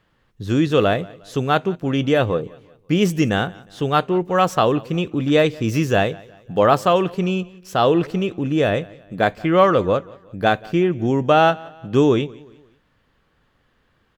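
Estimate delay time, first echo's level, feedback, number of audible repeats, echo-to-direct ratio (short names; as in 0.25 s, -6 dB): 0.179 s, -23.0 dB, 42%, 2, -22.0 dB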